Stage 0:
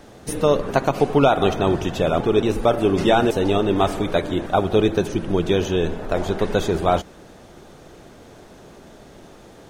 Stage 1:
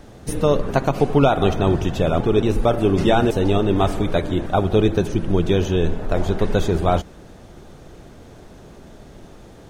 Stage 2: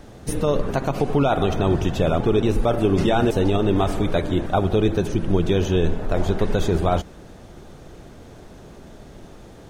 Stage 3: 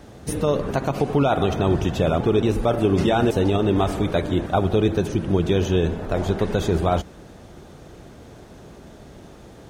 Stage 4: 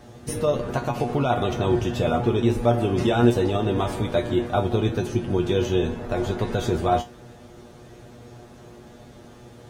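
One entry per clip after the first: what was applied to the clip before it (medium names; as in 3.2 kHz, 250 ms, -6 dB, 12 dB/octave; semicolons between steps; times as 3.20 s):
bass shelf 160 Hz +10 dB; trim -1.5 dB
peak limiter -9.5 dBFS, peak gain reduction 8 dB
high-pass 42 Hz
feedback comb 120 Hz, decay 0.19 s, harmonics all, mix 90%; trim +6 dB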